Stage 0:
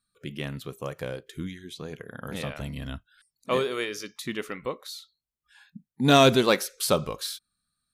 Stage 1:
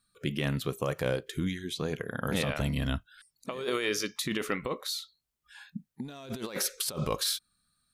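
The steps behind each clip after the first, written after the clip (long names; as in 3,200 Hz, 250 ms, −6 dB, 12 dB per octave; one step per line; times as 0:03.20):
compressor whose output falls as the input rises −33 dBFS, ratio −1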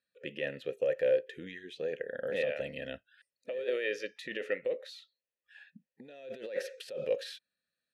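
formant filter e
level +7 dB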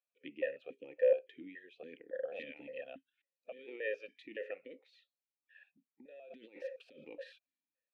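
formant filter that steps through the vowels 7.1 Hz
level +3 dB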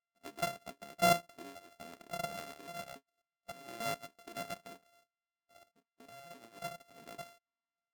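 samples sorted by size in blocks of 64 samples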